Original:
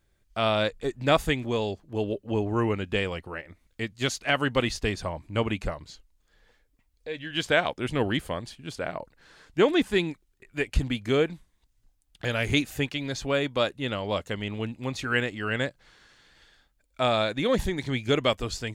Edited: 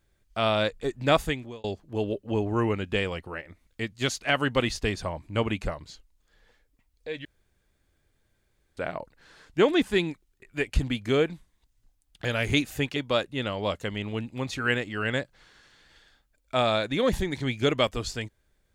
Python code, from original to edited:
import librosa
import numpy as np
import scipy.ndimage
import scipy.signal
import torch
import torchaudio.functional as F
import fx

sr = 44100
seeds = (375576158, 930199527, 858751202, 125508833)

y = fx.edit(x, sr, fx.fade_out_span(start_s=1.17, length_s=0.47),
    fx.room_tone_fill(start_s=7.25, length_s=1.52),
    fx.cut(start_s=12.96, length_s=0.46), tone=tone)